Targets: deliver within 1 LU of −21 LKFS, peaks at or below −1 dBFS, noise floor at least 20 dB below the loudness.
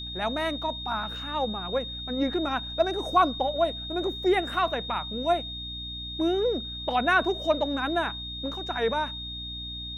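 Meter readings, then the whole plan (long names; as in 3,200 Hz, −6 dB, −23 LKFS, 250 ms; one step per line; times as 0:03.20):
mains hum 60 Hz; hum harmonics up to 300 Hz; level of the hum −39 dBFS; interfering tone 3,700 Hz; level of the tone −35 dBFS; integrated loudness −27.5 LKFS; sample peak −9.0 dBFS; target loudness −21.0 LKFS
→ mains-hum notches 60/120/180/240/300 Hz
notch filter 3,700 Hz, Q 30
level +6.5 dB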